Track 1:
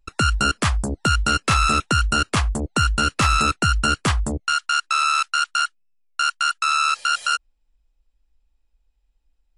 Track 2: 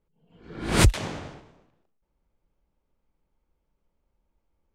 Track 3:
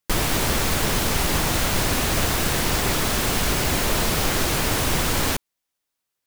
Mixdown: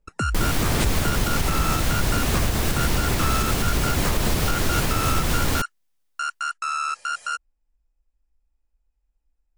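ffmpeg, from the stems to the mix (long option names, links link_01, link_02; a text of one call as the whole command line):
ffmpeg -i stem1.wav -i stem2.wav -i stem3.wav -filter_complex "[0:a]lowpass=9700,equalizer=frequency=3600:width=1.6:gain=-12.5,volume=-4.5dB[link_01];[1:a]volume=-2.5dB[link_02];[2:a]lowshelf=frequency=230:gain=7.5,adelay=250,volume=-1.5dB[link_03];[link_01][link_02][link_03]amix=inputs=3:normalize=0,alimiter=limit=-11dB:level=0:latency=1:release=140" out.wav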